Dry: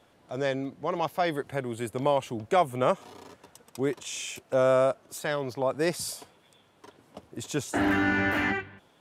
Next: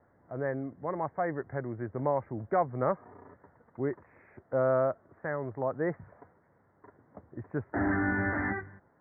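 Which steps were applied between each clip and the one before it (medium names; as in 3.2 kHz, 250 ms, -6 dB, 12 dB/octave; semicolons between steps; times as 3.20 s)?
steep low-pass 2 kHz 96 dB/octave; peaking EQ 84 Hz +6 dB 1.6 oct; trim -4.5 dB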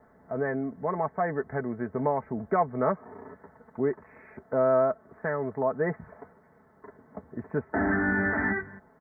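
comb 4.6 ms, depth 62%; in parallel at 0 dB: compression, threshold -35 dBFS, peak gain reduction 13.5 dB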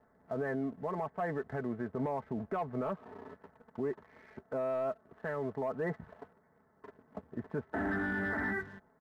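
waveshaping leveller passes 1; peak limiter -20 dBFS, peak gain reduction 8.5 dB; trim -7 dB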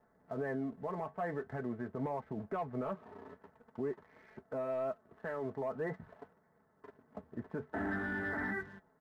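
flange 0.46 Hz, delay 5.5 ms, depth 4.9 ms, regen -66%; trim +1.5 dB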